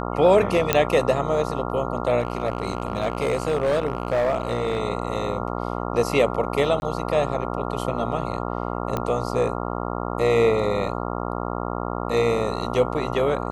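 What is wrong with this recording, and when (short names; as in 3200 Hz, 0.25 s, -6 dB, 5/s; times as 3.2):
buzz 60 Hz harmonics 23 -28 dBFS
0.73 pop -2 dBFS
2.19–4.8 clipped -17 dBFS
6.8–6.82 gap 21 ms
8.97 pop -12 dBFS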